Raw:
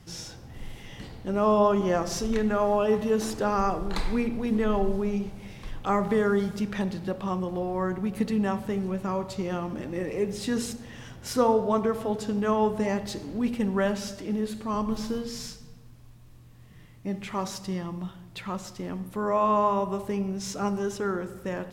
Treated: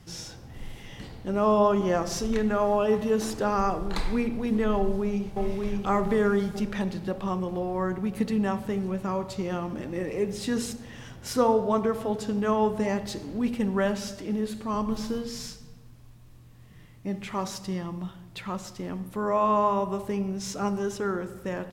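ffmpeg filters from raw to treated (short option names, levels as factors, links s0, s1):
-filter_complex "[0:a]asplit=2[s0][s1];[s1]afade=t=in:st=4.77:d=0.01,afade=t=out:st=5.41:d=0.01,aecho=0:1:590|1180|1770|2360|2950|3540|4130:0.749894|0.374947|0.187474|0.0937368|0.0468684|0.0234342|0.0117171[s2];[s0][s2]amix=inputs=2:normalize=0"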